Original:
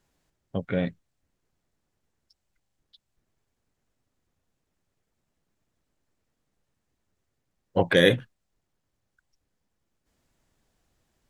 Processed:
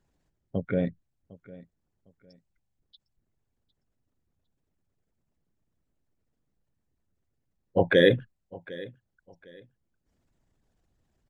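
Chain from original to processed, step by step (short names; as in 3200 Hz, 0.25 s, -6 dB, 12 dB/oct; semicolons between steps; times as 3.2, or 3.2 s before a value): formant sharpening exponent 1.5; on a send: feedback echo 0.755 s, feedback 27%, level -20 dB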